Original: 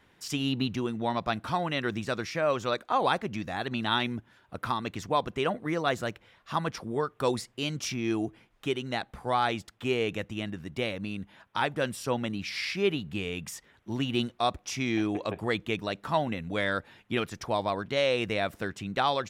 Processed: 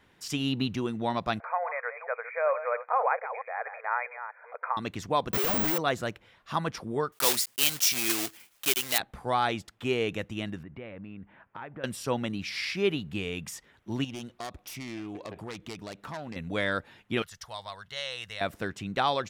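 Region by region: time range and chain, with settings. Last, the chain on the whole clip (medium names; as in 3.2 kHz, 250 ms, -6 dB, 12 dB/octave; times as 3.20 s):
1.40–4.77 s: chunks repeated in reverse 224 ms, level -10 dB + brick-wall FIR band-pass 440–2500 Hz + upward compressor, threshold -38 dBFS
5.33–5.78 s: one-bit comparator + careless resampling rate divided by 2×, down none, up zero stuff
7.12–9.00 s: block-companded coder 3-bit + tilt EQ +4 dB/octave
10.63–11.84 s: low-pass 2.3 kHz 24 dB/octave + compression 3:1, threshold -41 dBFS
14.04–16.36 s: self-modulated delay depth 0.23 ms + compression 2.5:1, threshold -39 dBFS
17.22–18.41 s: amplifier tone stack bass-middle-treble 10-0-10 + band-stop 2.4 kHz, Q 5.9
whole clip: none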